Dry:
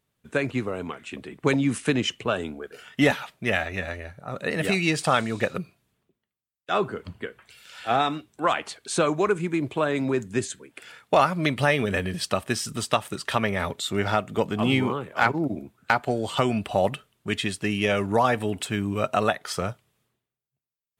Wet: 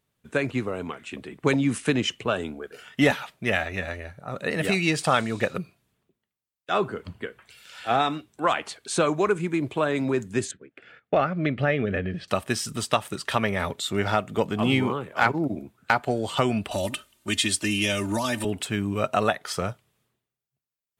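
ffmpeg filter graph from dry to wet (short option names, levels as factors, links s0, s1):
-filter_complex "[0:a]asettb=1/sr,asplit=3[s0][s1][s2];[s0]atrim=end=10.514[s3];[s1]atrim=start=10.51:end=12.28,asetpts=PTS-STARTPTS,afade=t=in:d=0.004:c=qsin,afade=t=out:st=1.766:d=0.004:c=qsin,agate=range=0.251:threshold=0.00355:ratio=16:release=100:detection=peak,lowpass=2000,equalizer=f=970:w=3.4:g=-13.5[s4];[s2]atrim=start=12.276[s5];[s3][s4]acrossfade=d=0.004:c1=hsin:c2=qsin[s6];[s6][s5]acrossfade=d=0.004:c1=qsin:c2=hsin,asettb=1/sr,asplit=3[s7][s8][s9];[s7]atrim=end=16.714[s10];[s8]atrim=start=16.71:end=18.45,asetpts=PTS-STARTPTS,afade=t=in:d=0.004:c=qsin,afade=t=out:st=1.736:d=0.004:c=qsin,equalizer=f=8700:t=o:w=2.7:g=9,aecho=1:1:3.3:0.88,atrim=end_sample=76734,acrossover=split=260|3000[s11][s12][s13];[s12]acompressor=threshold=0.0398:ratio=4:attack=3.2:release=140:knee=2.83:detection=peak[s14];[s11][s14][s13]amix=inputs=3:normalize=0[s15];[s9]atrim=start=18.446[s16];[s10][s15]acrossfade=d=0.004:c1=hsin:c2=qsin[s17];[s17][s16]acrossfade=d=0.004:c1=qsin:c2=hsin"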